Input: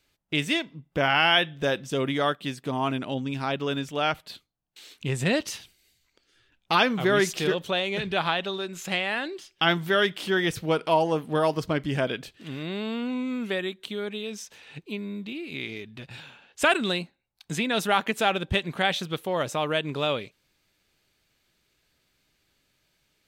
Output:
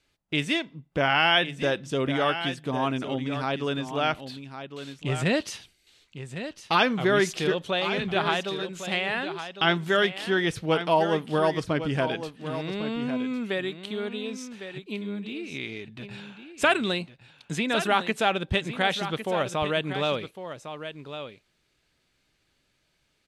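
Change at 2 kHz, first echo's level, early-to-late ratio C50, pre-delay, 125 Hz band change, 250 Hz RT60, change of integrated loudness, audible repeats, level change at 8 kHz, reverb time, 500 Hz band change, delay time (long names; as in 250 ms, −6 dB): 0.0 dB, −10.5 dB, no reverb audible, no reverb audible, +0.5 dB, no reverb audible, 0.0 dB, 1, −2.5 dB, no reverb audible, +0.5 dB, 1,105 ms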